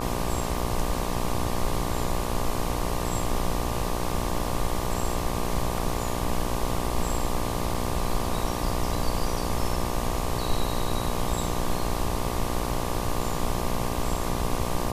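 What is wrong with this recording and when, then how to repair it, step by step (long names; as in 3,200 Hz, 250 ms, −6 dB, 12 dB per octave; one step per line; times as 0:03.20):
mains buzz 60 Hz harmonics 20 −31 dBFS
0:07.74–0:07.75: drop-out 5 ms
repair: hum removal 60 Hz, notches 20
repair the gap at 0:07.74, 5 ms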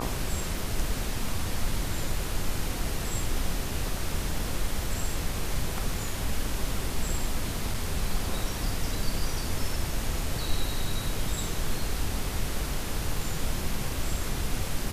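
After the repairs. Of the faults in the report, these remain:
none of them is left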